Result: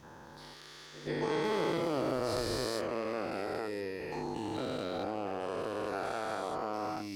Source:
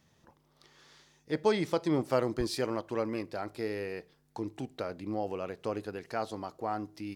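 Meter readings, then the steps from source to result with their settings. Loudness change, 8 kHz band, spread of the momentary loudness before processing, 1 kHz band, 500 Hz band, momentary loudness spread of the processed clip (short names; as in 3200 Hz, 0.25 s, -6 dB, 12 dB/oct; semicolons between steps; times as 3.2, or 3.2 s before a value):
-1.0 dB, +2.0 dB, 10 LU, +1.0 dB, -1.0 dB, 14 LU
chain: spectral dilation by 0.48 s; compressor 2:1, threshold -42 dBFS, peak gain reduction 14 dB; added harmonics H 8 -29 dB, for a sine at -21.5 dBFS; pre-echo 0.127 s -15.5 dB; gain +1.5 dB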